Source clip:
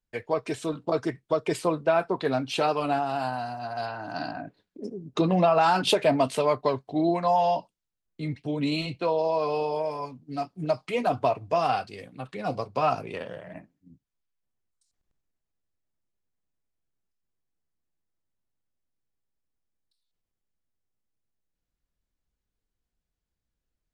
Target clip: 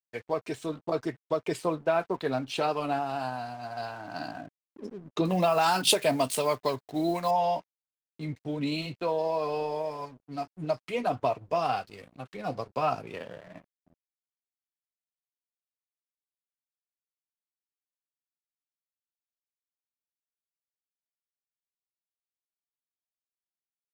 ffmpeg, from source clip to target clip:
-filter_complex "[0:a]aeval=exprs='sgn(val(0))*max(abs(val(0))-0.00316,0)':c=same,asettb=1/sr,asplit=3[s0][s1][s2];[s0]atrim=end=5.254[s3];[s1]atrim=start=5.25:end=7.31,asetpts=PTS-STARTPTS,afade=t=in:d=0.004:c=qsin,afade=t=out:st=2.056:d=0.004:c=qsin,aemphasis=mode=production:type=75fm[s4];[s2]atrim=start=7.306[s5];[s3][s4]acrossfade=d=0.004:c1=hsin:c2=qsin[s6];[s6][s5]acrossfade=d=0.004:c1=qsin:c2=hsin,volume=0.708"

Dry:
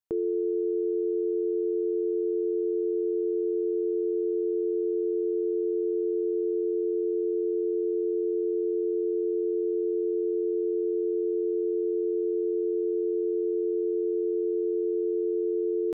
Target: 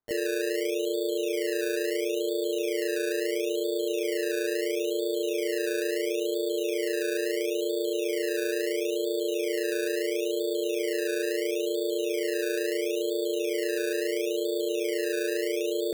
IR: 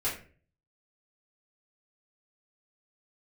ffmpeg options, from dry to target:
-filter_complex "[0:a]asplit=2[s0][s1];[s1]asetrate=58866,aresample=44100,atempo=0.749154,volume=0.708[s2];[s0][s2]amix=inputs=2:normalize=0,acrusher=samples=16:mix=1:aa=0.000001:lfo=1:lforange=9.6:lforate=0.74,volume=0.708"

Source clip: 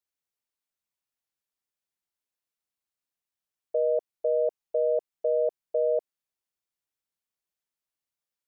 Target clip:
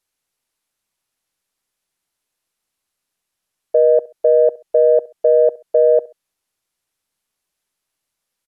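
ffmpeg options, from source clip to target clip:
-af "acontrast=65,aecho=1:1:67|134:0.0841|0.0269,volume=2.11" -ar 44100 -c:a mp2 -b:a 192k

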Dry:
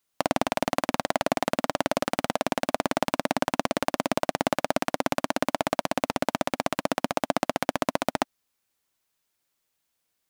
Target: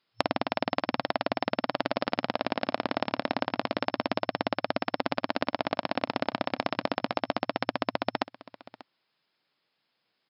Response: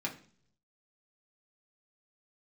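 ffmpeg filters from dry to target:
-filter_complex "[0:a]afftfilt=real='re*between(b*sr/4096,110,5300)':imag='im*between(b*sr/4096,110,5300)':win_size=4096:overlap=0.75,acompressor=threshold=0.0398:ratio=12,asplit=2[s0][s1];[s1]aecho=0:1:589:0.112[s2];[s0][s2]amix=inputs=2:normalize=0,volume=1.88"

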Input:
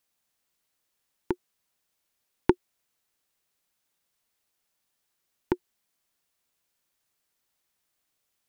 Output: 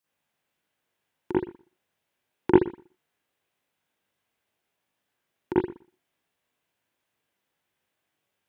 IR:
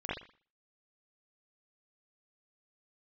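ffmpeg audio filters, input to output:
-filter_complex "[0:a]highpass=84[s0];[1:a]atrim=start_sample=2205[s1];[s0][s1]afir=irnorm=-1:irlink=0,volume=0.891"

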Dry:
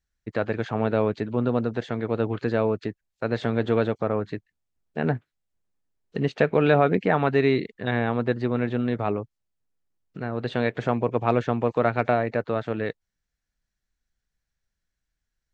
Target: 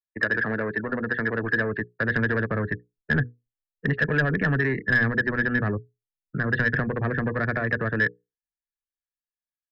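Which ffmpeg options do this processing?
-filter_complex "[0:a]acrossover=split=140|590[s0][s1][s2];[s0]acompressor=threshold=0.00501:ratio=4[s3];[s1]acompressor=threshold=0.0501:ratio=4[s4];[s2]acompressor=threshold=0.0224:ratio=4[s5];[s3][s4][s5]amix=inputs=3:normalize=0,asplit=2[s6][s7];[s7]aeval=exprs='0.0398*(abs(mod(val(0)/0.0398+3,4)-2)-1)':c=same,volume=0.398[s8];[s6][s8]amix=inputs=2:normalize=0,afftdn=nr=36:nf=-44,bandreject=f=60:t=h:w=6,bandreject=f=120:t=h:w=6,bandreject=f=180:t=h:w=6,bandreject=f=240:t=h:w=6,bandreject=f=300:t=h:w=6,bandreject=f=360:t=h:w=6,bandreject=f=420:t=h:w=6,bandreject=f=480:t=h:w=6,atempo=1.6,acrossover=split=160[s9][s10];[s9]dynaudnorm=f=410:g=9:m=4.22[s11];[s11][s10]amix=inputs=2:normalize=0,lowpass=f=1700:t=q:w=14,asoftclip=type=tanh:threshold=0.282,equalizer=f=810:w=2.1:g=-8"

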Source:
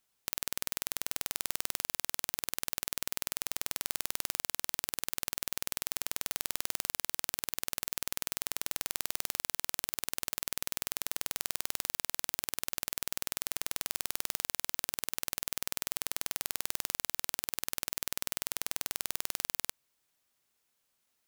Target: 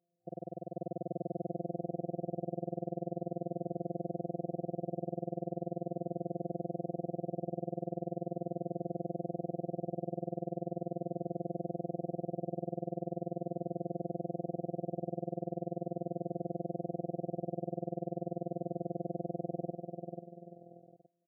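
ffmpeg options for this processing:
-af "aecho=1:1:490|833|1073|1241|1359:0.631|0.398|0.251|0.158|0.1,afftfilt=real='hypot(re,im)*cos(PI*b)':imag='0':win_size=1024:overlap=0.75,afftfilt=real='re*between(b*sr/4096,110,750)':imag='im*between(b*sr/4096,110,750)':win_size=4096:overlap=0.75,volume=3.76"

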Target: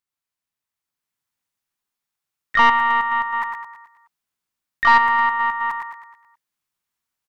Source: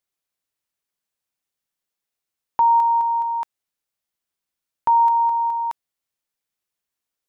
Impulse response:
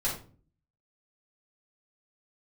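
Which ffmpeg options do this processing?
-filter_complex "[0:a]equalizer=f=125:t=o:w=1:g=5,equalizer=f=500:t=o:w=1:g=-5,equalizer=f=1000:t=o:w=1:g=6,aecho=1:1:107|214|321|428|535|642:0.531|0.255|0.122|0.0587|0.0282|0.0135,dynaudnorm=f=680:g=3:m=2,asplit=4[s0][s1][s2][s3];[s1]asetrate=55563,aresample=44100,atempo=0.793701,volume=0.631[s4];[s2]asetrate=66075,aresample=44100,atempo=0.66742,volume=0.251[s5];[s3]asetrate=88200,aresample=44100,atempo=0.5,volume=0.708[s6];[s0][s4][s5][s6]amix=inputs=4:normalize=0,aeval=exprs='(tanh(0.891*val(0)+0.4)-tanh(0.4))/0.891':c=same,volume=0.501"

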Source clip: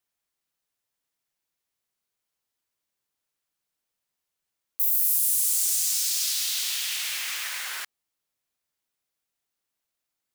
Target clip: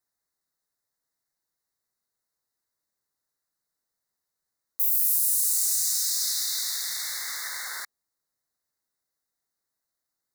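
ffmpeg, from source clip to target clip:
-af "aeval=exprs='0.316*(cos(1*acos(clip(val(0)/0.316,-1,1)))-cos(1*PI/2))+0.00447*(cos(3*acos(clip(val(0)/0.316,-1,1)))-cos(3*PI/2))':c=same,asuperstop=centerf=2800:order=12:qfactor=1.8"

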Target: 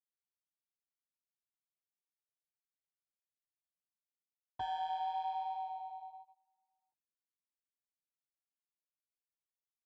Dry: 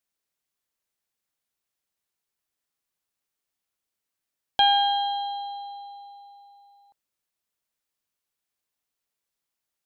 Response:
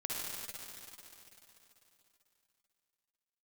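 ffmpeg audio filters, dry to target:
-filter_complex "[0:a]aeval=exprs='val(0)*sin(2*PI*84*n/s)':c=same,areverse,acompressor=threshold=0.0224:ratio=8,areverse,bass=f=250:g=10,treble=f=4000:g=-4,asplit=2[s0][s1];[s1]adelay=14,volume=0.447[s2];[s0][s2]amix=inputs=2:normalize=0,afreqshift=38,equalizer=f=2800:w=1.4:g=-7,adynamicsmooth=sensitivity=2:basefreq=1600,flanger=delay=1.1:depth=7:regen=-32:speed=0.89:shape=triangular,agate=range=0.0562:threshold=0.00224:ratio=16:detection=peak,volume=1.5"

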